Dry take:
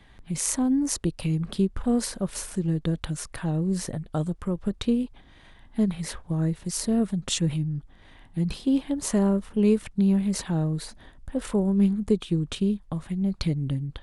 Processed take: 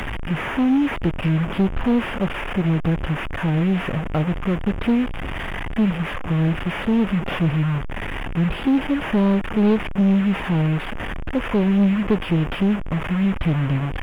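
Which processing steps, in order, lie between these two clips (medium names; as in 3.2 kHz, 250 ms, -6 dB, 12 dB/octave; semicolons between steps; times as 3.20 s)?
one-bit delta coder 16 kbps, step -28.5 dBFS; waveshaping leveller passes 2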